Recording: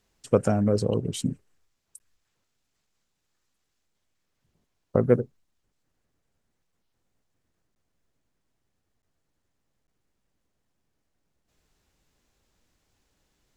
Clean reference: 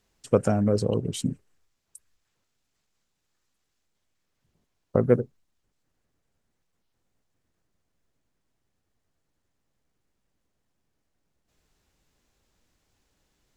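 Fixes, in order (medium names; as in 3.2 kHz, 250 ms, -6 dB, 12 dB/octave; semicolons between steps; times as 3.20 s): interpolate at 1.99/7.75/9.02/9.87 s, 9.8 ms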